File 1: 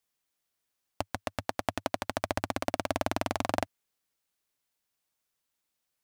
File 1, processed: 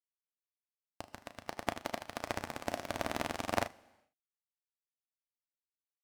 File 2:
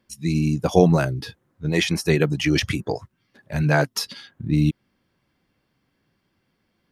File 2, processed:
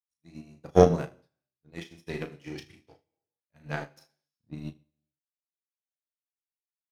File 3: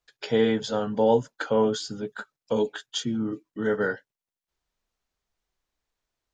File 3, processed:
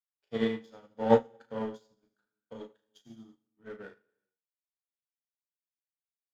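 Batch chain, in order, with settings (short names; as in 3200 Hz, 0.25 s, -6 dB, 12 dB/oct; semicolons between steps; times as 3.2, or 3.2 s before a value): power-law curve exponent 1.4; early reflections 35 ms -5 dB, 77 ms -11 dB; non-linear reverb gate 0.44 s falling, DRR 7 dB; upward expander 2.5:1, over -40 dBFS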